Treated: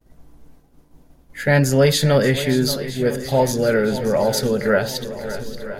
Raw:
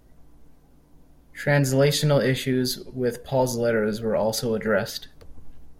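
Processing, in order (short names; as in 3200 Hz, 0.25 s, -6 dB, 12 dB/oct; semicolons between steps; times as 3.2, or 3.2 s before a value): swung echo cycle 0.965 s, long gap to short 1.5:1, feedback 51%, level -13 dB; expander -49 dBFS; gain +4.5 dB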